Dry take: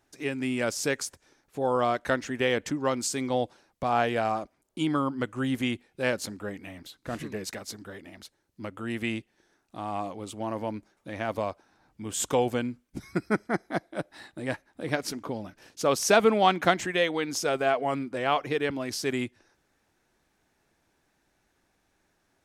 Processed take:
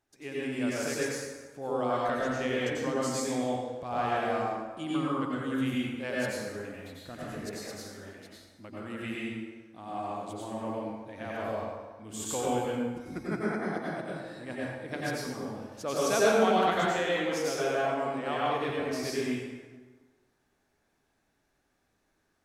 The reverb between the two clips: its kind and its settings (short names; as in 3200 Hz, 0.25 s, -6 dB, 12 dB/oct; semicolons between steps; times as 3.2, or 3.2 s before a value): plate-style reverb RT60 1.4 s, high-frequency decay 0.65×, pre-delay 80 ms, DRR -6.5 dB; gain -10.5 dB